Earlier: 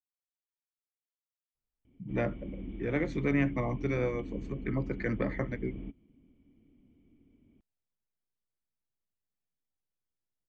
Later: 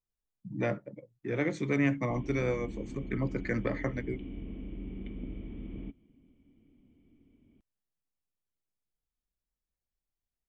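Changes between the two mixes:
speech: entry -1.55 s; master: remove distance through air 120 m

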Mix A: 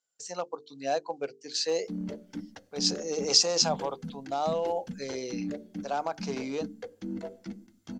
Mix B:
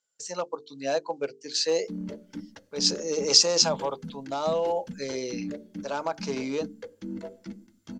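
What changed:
speech +3.5 dB; master: add Butterworth band-stop 740 Hz, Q 7.3

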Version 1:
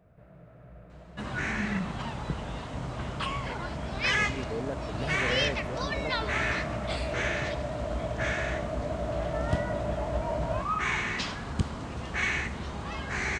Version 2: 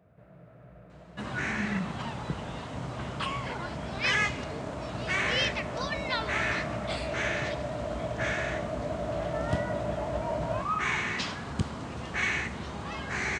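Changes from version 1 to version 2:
speech -9.5 dB; master: add high-pass 82 Hz 12 dB/octave

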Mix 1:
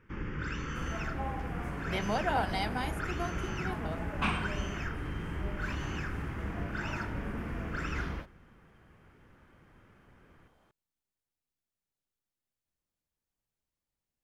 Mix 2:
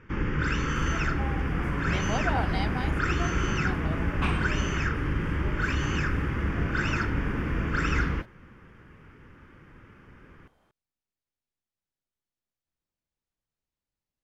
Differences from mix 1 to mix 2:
speech: add low-pass 6.7 kHz; first sound +11.0 dB; reverb: off

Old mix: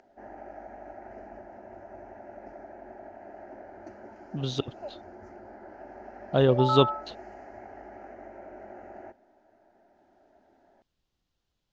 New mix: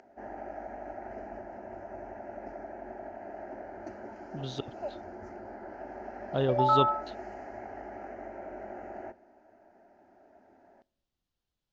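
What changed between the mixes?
speech -7.5 dB; reverb: on

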